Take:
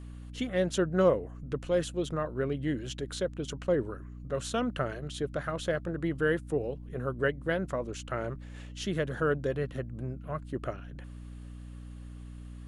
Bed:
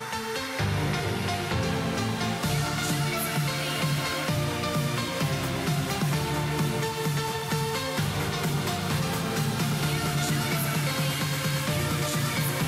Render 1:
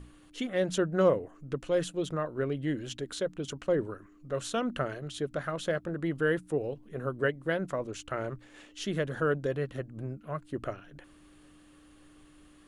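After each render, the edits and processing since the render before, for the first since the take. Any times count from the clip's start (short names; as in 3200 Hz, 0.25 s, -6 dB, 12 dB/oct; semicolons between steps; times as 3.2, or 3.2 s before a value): notches 60/120/180/240 Hz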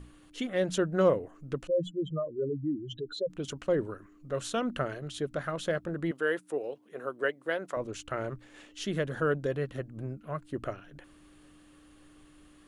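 1.67–3.3 spectral contrast raised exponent 2.9; 6.11–7.77 HPF 380 Hz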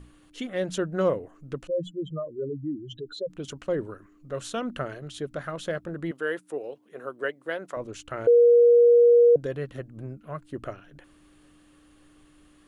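8.27–9.36 bleep 476 Hz -12.5 dBFS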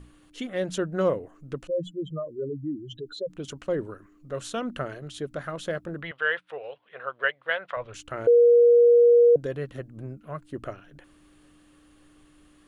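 6.02–7.94 EQ curve 110 Hz 0 dB, 310 Hz -18 dB, 510 Hz 0 dB, 1600 Hz +8 dB, 3400 Hz +9 dB, 7400 Hz -21 dB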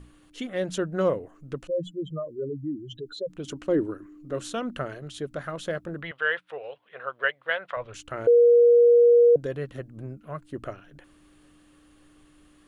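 3.46–4.54 bell 310 Hz +11.5 dB 0.51 oct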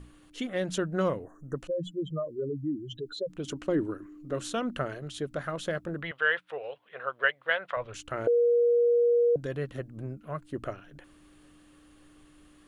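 1.24–1.56 spectral delete 1900–5700 Hz; dynamic EQ 470 Hz, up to -7 dB, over -30 dBFS, Q 1.4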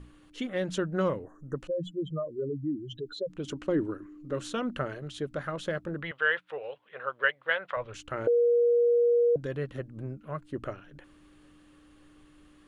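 high shelf 7800 Hz -9.5 dB; notch 690 Hz, Q 12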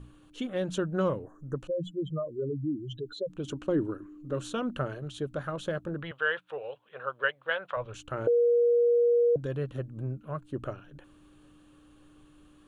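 thirty-one-band EQ 125 Hz +5 dB, 2000 Hz -10 dB, 5000 Hz -6 dB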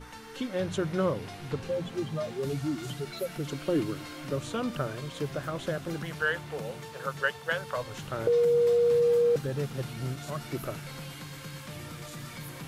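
add bed -14.5 dB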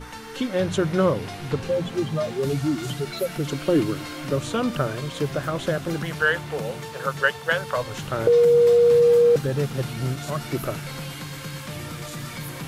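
gain +7.5 dB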